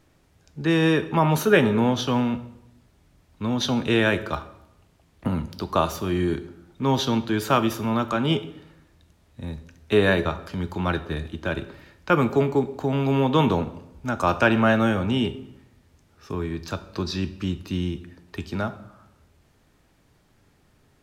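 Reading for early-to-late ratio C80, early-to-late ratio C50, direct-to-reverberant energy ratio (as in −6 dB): 17.0 dB, 14.5 dB, 11.0 dB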